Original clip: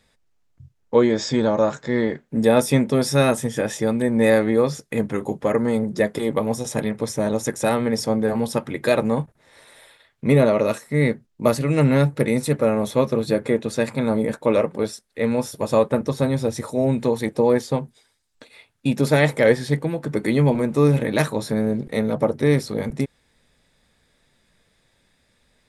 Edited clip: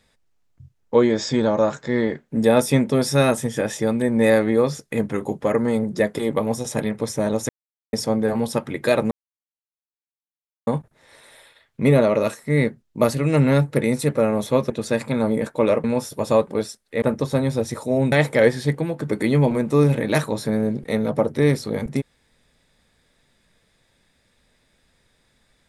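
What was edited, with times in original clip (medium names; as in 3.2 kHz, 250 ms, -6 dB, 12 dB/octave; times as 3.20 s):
7.49–7.93 s: mute
9.11 s: insert silence 1.56 s
13.14–13.57 s: delete
14.71–15.26 s: move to 15.89 s
16.99–19.16 s: delete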